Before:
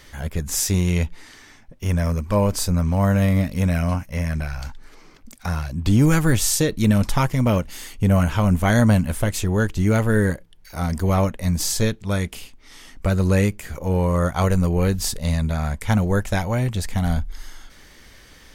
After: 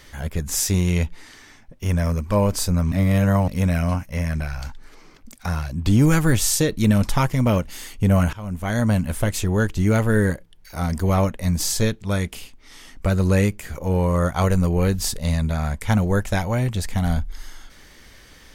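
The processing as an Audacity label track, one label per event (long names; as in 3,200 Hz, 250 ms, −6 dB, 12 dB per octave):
2.920000	3.480000	reverse
8.330000	9.230000	fade in, from −19 dB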